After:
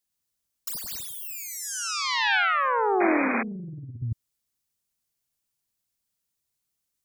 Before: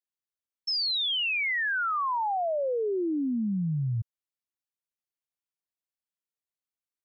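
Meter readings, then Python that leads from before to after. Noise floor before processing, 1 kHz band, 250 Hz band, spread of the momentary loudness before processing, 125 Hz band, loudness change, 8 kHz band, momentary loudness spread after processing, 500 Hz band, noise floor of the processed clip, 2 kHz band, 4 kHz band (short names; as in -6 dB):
under -85 dBFS, +4.0 dB, +0.5 dB, 6 LU, -4.5 dB, +1.5 dB, n/a, 15 LU, +1.0 dB, -81 dBFS, +3.0 dB, -3.5 dB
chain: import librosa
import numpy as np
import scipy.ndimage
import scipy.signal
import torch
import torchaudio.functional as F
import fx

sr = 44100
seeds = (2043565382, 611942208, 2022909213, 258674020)

y = fx.self_delay(x, sr, depth_ms=0.46)
y = fx.bass_treble(y, sr, bass_db=10, treble_db=8)
y = y + 10.0 ** (-4.5 / 20.0) * np.pad(y, (int(107 * sr / 1000.0), 0))[:len(y)]
y = fx.over_compress(y, sr, threshold_db=-27.0, ratio=-0.5)
y = fx.spec_paint(y, sr, seeds[0], shape='noise', start_s=3.0, length_s=0.43, low_hz=200.0, high_hz=2500.0, level_db=-27.0)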